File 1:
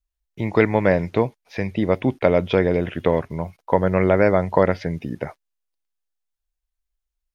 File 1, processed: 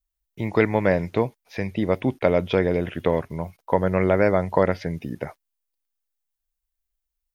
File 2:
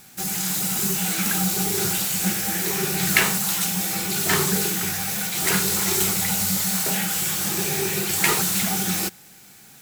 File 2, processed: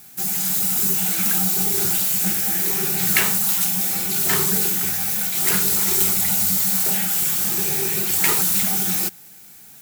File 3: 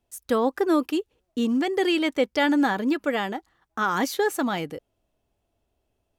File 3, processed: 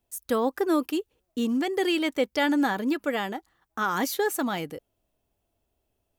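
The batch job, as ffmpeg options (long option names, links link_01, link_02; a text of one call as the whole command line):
ffmpeg -i in.wav -af "highshelf=frequency=11000:gain=12,volume=-2.5dB" out.wav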